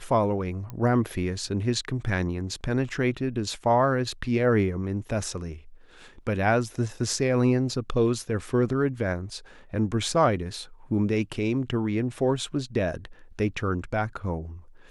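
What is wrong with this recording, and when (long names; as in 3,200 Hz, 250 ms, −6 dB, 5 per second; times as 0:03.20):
0:00.70: click −23 dBFS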